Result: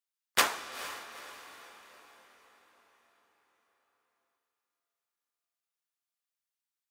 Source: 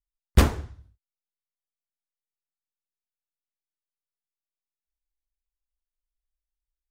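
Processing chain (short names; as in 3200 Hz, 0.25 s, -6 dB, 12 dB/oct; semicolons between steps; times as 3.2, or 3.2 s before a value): HPF 980 Hz 12 dB/oct; diffused feedback echo 0.455 s, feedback 45%, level -14 dB; reverb RT60 5.7 s, pre-delay 30 ms, DRR 12 dB; gain +3.5 dB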